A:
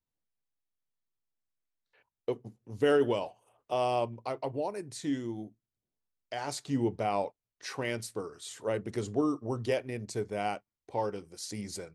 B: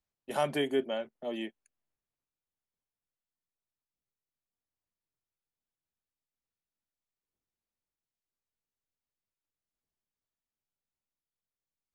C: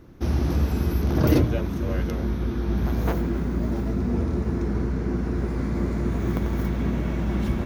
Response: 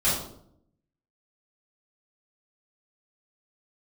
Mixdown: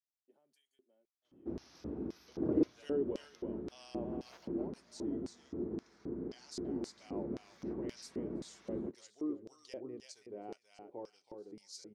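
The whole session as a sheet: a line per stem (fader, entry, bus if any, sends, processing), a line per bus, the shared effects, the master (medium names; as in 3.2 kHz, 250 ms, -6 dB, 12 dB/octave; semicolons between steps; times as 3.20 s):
-5.5 dB, 0.00 s, no send, echo send -5 dB, none
-8.0 dB, 0.00 s, no send, no echo send, pre-emphasis filter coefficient 0.8; compression 10:1, threshold -52 dBFS, peak gain reduction 16 dB
-5.0 dB, 1.25 s, no send, no echo send, treble shelf 3.1 kHz -11 dB; hum notches 50/100/150/200/250/300/350 Hz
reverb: none
echo: feedback delay 326 ms, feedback 22%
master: bass shelf 110 Hz -4 dB; LFO band-pass square 1.9 Hz 340–5300 Hz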